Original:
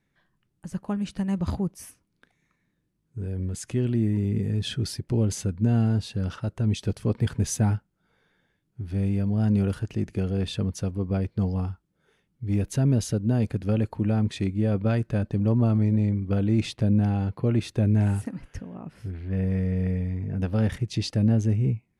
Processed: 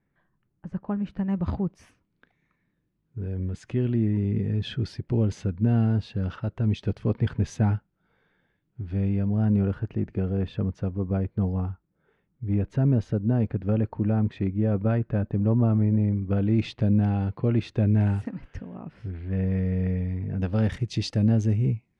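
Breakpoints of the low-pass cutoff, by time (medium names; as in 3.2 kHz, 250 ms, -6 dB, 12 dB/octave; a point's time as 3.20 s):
1.10 s 1.7 kHz
1.65 s 3 kHz
9.03 s 3 kHz
9.60 s 1.8 kHz
16.12 s 1.8 kHz
16.64 s 3.6 kHz
19.98 s 3.6 kHz
20.83 s 7 kHz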